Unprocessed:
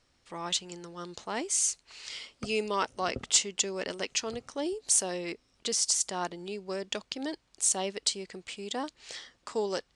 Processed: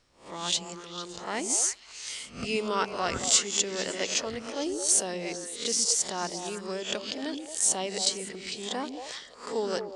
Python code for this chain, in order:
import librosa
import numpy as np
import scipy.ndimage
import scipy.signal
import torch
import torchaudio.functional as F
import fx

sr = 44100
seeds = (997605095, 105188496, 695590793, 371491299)

y = fx.spec_swells(x, sr, rise_s=0.39)
y = fx.echo_stepped(y, sr, ms=113, hz=230.0, octaves=1.4, feedback_pct=70, wet_db=-2)